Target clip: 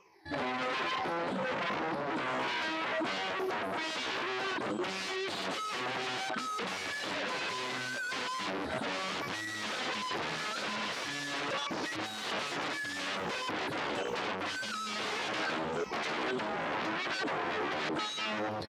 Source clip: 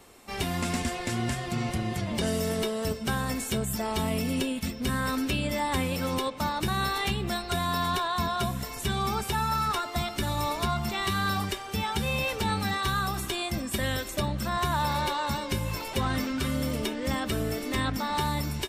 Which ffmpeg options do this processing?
ffmpeg -i in.wav -af "afftfilt=real='re*pow(10,23/40*sin(2*PI*(0.79*log(max(b,1)*sr/1024/100)/log(2)-(-1.2)*(pts-256)/sr)))':imag='im*pow(10,23/40*sin(2*PI*(0.79*log(max(b,1)*sr/1024/100)/log(2)-(-1.2)*(pts-256)/sr)))':win_size=1024:overlap=0.75,afwtdn=0.0501,alimiter=limit=-20dB:level=0:latency=1:release=40,dynaudnorm=framelen=790:gausssize=11:maxgain=8dB,asoftclip=type=tanh:threshold=-25dB,asetrate=64194,aresample=44100,atempo=0.686977,aeval=exprs='0.0224*(abs(mod(val(0)/0.0224+3,4)-2)-1)':channel_layout=same,highpass=210,lowpass=4100,aecho=1:1:305:0.0891,volume=5.5dB" out.wav

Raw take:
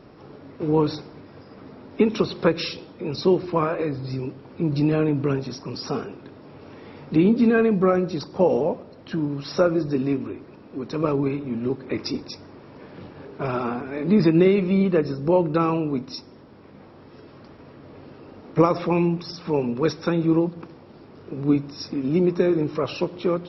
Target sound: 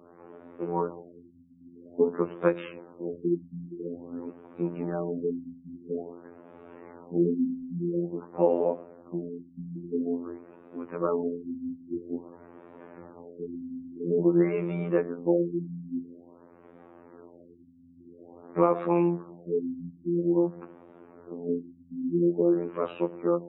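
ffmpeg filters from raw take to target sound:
ffmpeg -i in.wav -filter_complex "[0:a]afftfilt=real='hypot(re,im)*cos(PI*b)':imag='0':win_size=2048:overlap=0.75,acrossover=split=230 2200:gain=0.251 1 0.112[link_01][link_02][link_03];[link_01][link_02][link_03]amix=inputs=3:normalize=0,afftfilt=real='re*lt(b*sr/1024,280*pow(3900/280,0.5+0.5*sin(2*PI*0.49*pts/sr)))':imag='im*lt(b*sr/1024,280*pow(3900/280,0.5+0.5*sin(2*PI*0.49*pts/sr)))':win_size=1024:overlap=0.75" out.wav

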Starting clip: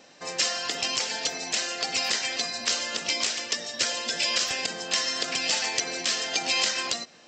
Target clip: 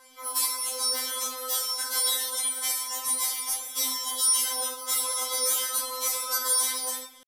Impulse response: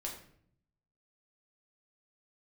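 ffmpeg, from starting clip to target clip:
-filter_complex "[0:a]asetrate=85689,aresample=44100,atempo=0.514651[link_01];[1:a]atrim=start_sample=2205,asetrate=42336,aresample=44100[link_02];[link_01][link_02]afir=irnorm=-1:irlink=0,afftfilt=real='re*3.46*eq(mod(b,12),0)':imag='im*3.46*eq(mod(b,12),0)':win_size=2048:overlap=0.75,volume=3.5dB"

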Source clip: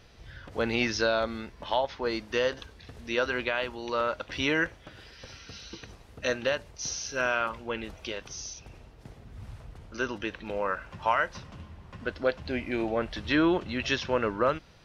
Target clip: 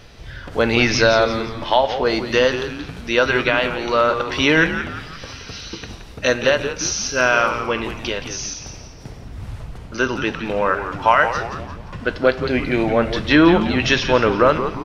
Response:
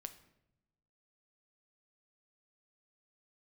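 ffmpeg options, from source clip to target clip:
-filter_complex "[0:a]asplit=6[link_01][link_02][link_03][link_04][link_05][link_06];[link_02]adelay=173,afreqshift=-110,volume=-9.5dB[link_07];[link_03]adelay=346,afreqshift=-220,volume=-16.4dB[link_08];[link_04]adelay=519,afreqshift=-330,volume=-23.4dB[link_09];[link_05]adelay=692,afreqshift=-440,volume=-30.3dB[link_10];[link_06]adelay=865,afreqshift=-550,volume=-37.2dB[link_11];[link_01][link_07][link_08][link_09][link_10][link_11]amix=inputs=6:normalize=0,asplit=2[link_12][link_13];[1:a]atrim=start_sample=2205[link_14];[link_13][link_14]afir=irnorm=-1:irlink=0,volume=11dB[link_15];[link_12][link_15]amix=inputs=2:normalize=0,volume=1.5dB"

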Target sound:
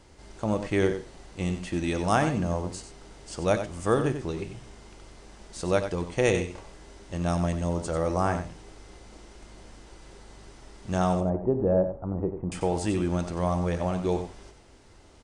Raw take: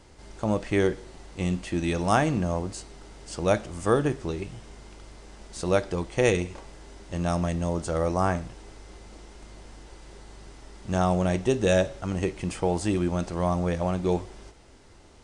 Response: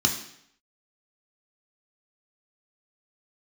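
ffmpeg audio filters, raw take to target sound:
-filter_complex "[0:a]asettb=1/sr,asplit=3[link_01][link_02][link_03];[link_01]atrim=end=11.204[link_04];[link_02]atrim=start=11.2:end=12.52,asetpts=PTS-STARTPTS,afade=type=in:duration=0.004:curve=qsin,afade=type=out:start_time=1.316:duration=0.004:curve=qsin,lowpass=frequency=1000:width=0.5412,lowpass=frequency=1000:width=1.3066[link_05];[link_03]atrim=start=12.516[link_06];[link_04][link_05]acrossfade=duration=0.004:curve1=hsin:curve2=qsin[link_07];[link_07][link_06]acrossfade=duration=0.004:curve1=qsin:curve2=hsin,aecho=1:1:92:0.335,volume=-1.5dB"

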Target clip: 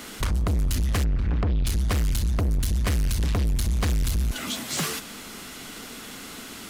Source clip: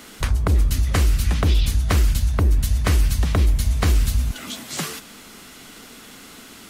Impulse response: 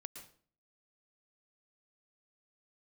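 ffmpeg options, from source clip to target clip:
-filter_complex "[0:a]asplit=3[link_01][link_02][link_03];[link_01]afade=type=out:start_time=1.03:duration=0.02[link_04];[link_02]lowpass=1500,afade=type=in:start_time=1.03:duration=0.02,afade=type=out:start_time=1.64:duration=0.02[link_05];[link_03]afade=type=in:start_time=1.64:duration=0.02[link_06];[link_04][link_05][link_06]amix=inputs=3:normalize=0,asoftclip=type=tanh:threshold=-23.5dB,volume=3dB"

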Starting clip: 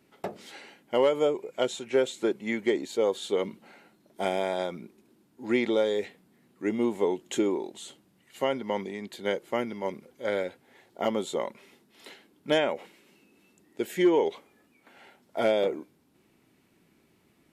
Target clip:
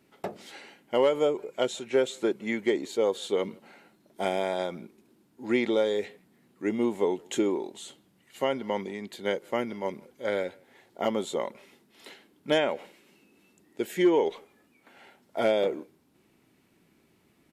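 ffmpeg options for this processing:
ffmpeg -i in.wav -filter_complex "[0:a]asplit=2[link_01][link_02];[link_02]adelay=160,highpass=300,lowpass=3400,asoftclip=type=hard:threshold=-22.5dB,volume=-26dB[link_03];[link_01][link_03]amix=inputs=2:normalize=0" out.wav

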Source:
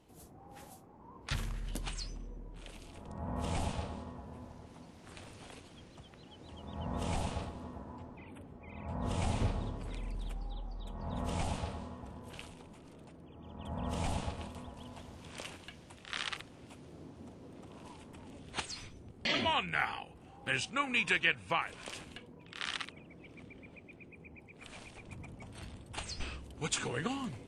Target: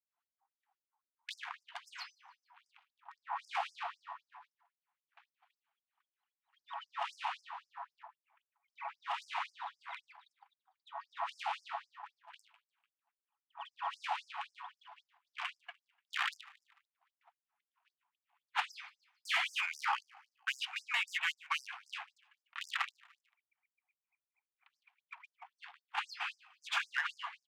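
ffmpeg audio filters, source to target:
ffmpeg -i in.wav -filter_complex "[0:a]afftfilt=real='re*lt(hypot(re,im),0.1)':imag='im*lt(hypot(re,im),0.1)':win_size=1024:overlap=0.75,agate=range=-34dB:threshold=-46dB:ratio=16:detection=peak,bass=frequency=250:gain=12,treble=frequency=4000:gain=-14,acrossover=split=100[link_01][link_02];[link_01]acompressor=threshold=-49dB:ratio=16[link_03];[link_03][link_02]amix=inputs=2:normalize=0,asplit=2[link_04][link_05];[link_05]highpass=frequency=720:poles=1,volume=19dB,asoftclip=type=tanh:threshold=-19.5dB[link_06];[link_04][link_06]amix=inputs=2:normalize=0,lowpass=frequency=1900:poles=1,volume=-6dB,adynamicsmooth=sensitivity=7:basefreq=5100,aecho=1:1:148|296|444:0.0668|0.0334|0.0167,afftfilt=real='re*gte(b*sr/1024,670*pow(5000/670,0.5+0.5*sin(2*PI*3.8*pts/sr)))':imag='im*gte(b*sr/1024,670*pow(5000/670,0.5+0.5*sin(2*PI*3.8*pts/sr)))':win_size=1024:overlap=0.75,volume=2dB" out.wav

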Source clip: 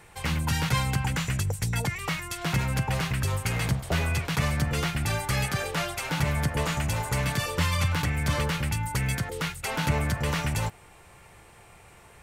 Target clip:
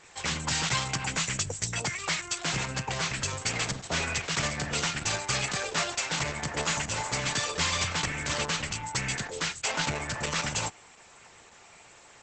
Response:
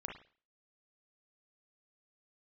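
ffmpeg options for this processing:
-af "aemphasis=mode=production:type=bsi" -ar 48000 -c:a libopus -b:a 10k

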